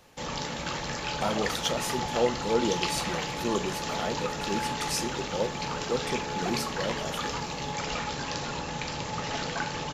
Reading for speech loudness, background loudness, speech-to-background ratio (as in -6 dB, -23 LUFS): -32.5 LUFS, -32.0 LUFS, -0.5 dB